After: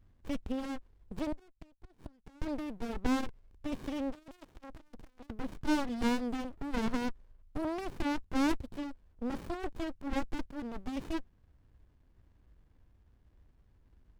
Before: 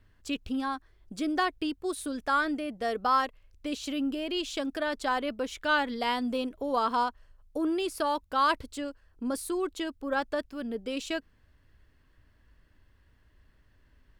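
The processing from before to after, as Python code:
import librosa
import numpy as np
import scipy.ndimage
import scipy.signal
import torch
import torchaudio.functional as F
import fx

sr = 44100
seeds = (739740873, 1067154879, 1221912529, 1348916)

y = fx.gate_flip(x, sr, shuts_db=-27.0, range_db=-28, at=(1.32, 2.42))
y = fx.tube_stage(y, sr, drive_db=37.0, bias=0.25, at=(4.1, 5.3))
y = fx.running_max(y, sr, window=65)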